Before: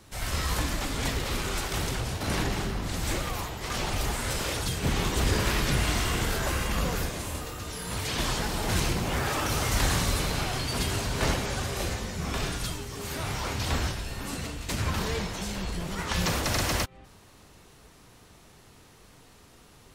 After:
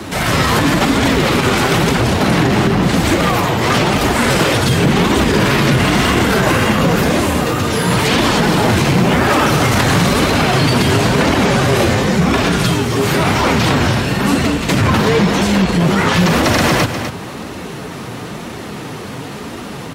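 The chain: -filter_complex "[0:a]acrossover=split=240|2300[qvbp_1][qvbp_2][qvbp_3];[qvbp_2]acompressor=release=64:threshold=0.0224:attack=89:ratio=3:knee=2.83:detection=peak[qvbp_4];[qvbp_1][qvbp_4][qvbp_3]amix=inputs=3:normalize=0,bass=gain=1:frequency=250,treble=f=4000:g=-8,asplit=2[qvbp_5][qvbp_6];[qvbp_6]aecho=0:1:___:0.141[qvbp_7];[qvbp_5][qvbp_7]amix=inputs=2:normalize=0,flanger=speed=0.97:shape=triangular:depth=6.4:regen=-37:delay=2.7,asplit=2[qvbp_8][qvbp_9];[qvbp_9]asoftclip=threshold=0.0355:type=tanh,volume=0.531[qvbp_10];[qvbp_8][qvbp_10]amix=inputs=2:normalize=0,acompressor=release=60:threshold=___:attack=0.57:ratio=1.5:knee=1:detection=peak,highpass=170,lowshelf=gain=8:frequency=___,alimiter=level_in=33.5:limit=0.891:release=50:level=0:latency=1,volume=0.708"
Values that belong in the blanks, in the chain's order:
250, 0.00316, 280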